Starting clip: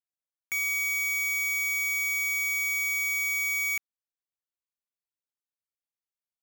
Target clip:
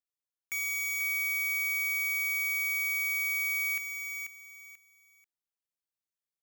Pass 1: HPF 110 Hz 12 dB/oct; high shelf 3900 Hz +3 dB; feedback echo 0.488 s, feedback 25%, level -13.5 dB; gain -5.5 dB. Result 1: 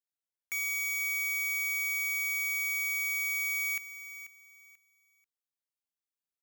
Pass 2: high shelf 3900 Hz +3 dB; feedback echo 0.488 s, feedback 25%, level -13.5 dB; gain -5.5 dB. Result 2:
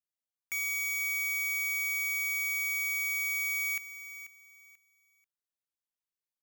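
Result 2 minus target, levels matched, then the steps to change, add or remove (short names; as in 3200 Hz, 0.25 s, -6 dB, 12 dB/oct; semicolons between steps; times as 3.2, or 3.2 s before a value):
echo-to-direct -7 dB
change: feedback echo 0.488 s, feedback 25%, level -6.5 dB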